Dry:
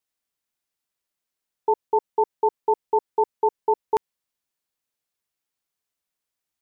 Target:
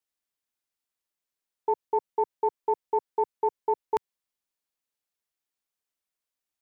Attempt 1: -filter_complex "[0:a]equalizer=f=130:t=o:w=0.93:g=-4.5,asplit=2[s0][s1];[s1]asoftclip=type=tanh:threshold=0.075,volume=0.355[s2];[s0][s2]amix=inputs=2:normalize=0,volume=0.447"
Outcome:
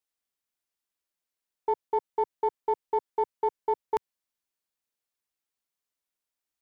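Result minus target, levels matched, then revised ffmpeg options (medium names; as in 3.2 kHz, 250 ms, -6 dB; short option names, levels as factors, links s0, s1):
saturation: distortion +14 dB
-filter_complex "[0:a]equalizer=f=130:t=o:w=0.93:g=-4.5,asplit=2[s0][s1];[s1]asoftclip=type=tanh:threshold=0.282,volume=0.355[s2];[s0][s2]amix=inputs=2:normalize=0,volume=0.447"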